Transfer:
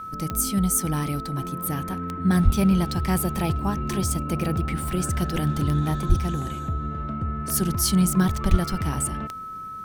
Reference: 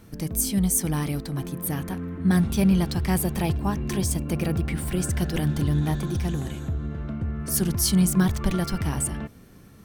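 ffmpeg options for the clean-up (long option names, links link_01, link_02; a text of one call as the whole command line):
ffmpeg -i in.wav -filter_complex "[0:a]adeclick=threshold=4,bandreject=frequency=1300:width=30,asplit=3[link_01][link_02][link_03];[link_01]afade=type=out:start_time=2.44:duration=0.02[link_04];[link_02]highpass=frequency=140:width=0.5412,highpass=frequency=140:width=1.3066,afade=type=in:start_time=2.44:duration=0.02,afade=type=out:start_time=2.56:duration=0.02[link_05];[link_03]afade=type=in:start_time=2.56:duration=0.02[link_06];[link_04][link_05][link_06]amix=inputs=3:normalize=0,asplit=3[link_07][link_08][link_09];[link_07]afade=type=out:start_time=6.08:duration=0.02[link_10];[link_08]highpass=frequency=140:width=0.5412,highpass=frequency=140:width=1.3066,afade=type=in:start_time=6.08:duration=0.02,afade=type=out:start_time=6.2:duration=0.02[link_11];[link_09]afade=type=in:start_time=6.2:duration=0.02[link_12];[link_10][link_11][link_12]amix=inputs=3:normalize=0,asplit=3[link_13][link_14][link_15];[link_13]afade=type=out:start_time=8.5:duration=0.02[link_16];[link_14]highpass=frequency=140:width=0.5412,highpass=frequency=140:width=1.3066,afade=type=in:start_time=8.5:duration=0.02,afade=type=out:start_time=8.62:duration=0.02[link_17];[link_15]afade=type=in:start_time=8.62:duration=0.02[link_18];[link_16][link_17][link_18]amix=inputs=3:normalize=0" out.wav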